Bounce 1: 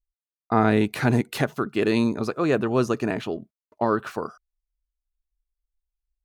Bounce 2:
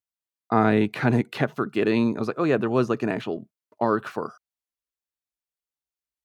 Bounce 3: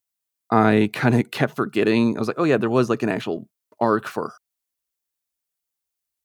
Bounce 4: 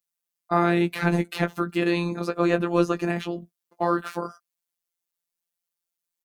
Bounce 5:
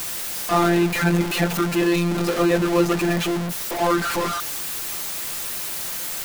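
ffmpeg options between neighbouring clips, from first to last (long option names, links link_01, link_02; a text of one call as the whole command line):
ffmpeg -i in.wav -filter_complex "[0:a]highpass=frequency=100:width=0.5412,highpass=frequency=100:width=1.3066,acrossover=split=4000[link_01][link_02];[link_02]acompressor=threshold=-53dB:ratio=6[link_03];[link_01][link_03]amix=inputs=2:normalize=0" out.wav
ffmpeg -i in.wav -af "highshelf=frequency=5900:gain=9,volume=3dB" out.wav
ffmpeg -i in.wav -filter_complex "[0:a]asplit=2[link_01][link_02];[link_02]adelay=16,volume=-8.5dB[link_03];[link_01][link_03]amix=inputs=2:normalize=0,afftfilt=real='hypot(re,im)*cos(PI*b)':imag='0':win_size=1024:overlap=0.75" out.wav
ffmpeg -i in.wav -af "aeval=exprs='val(0)+0.5*0.1*sgn(val(0))':channel_layout=same" out.wav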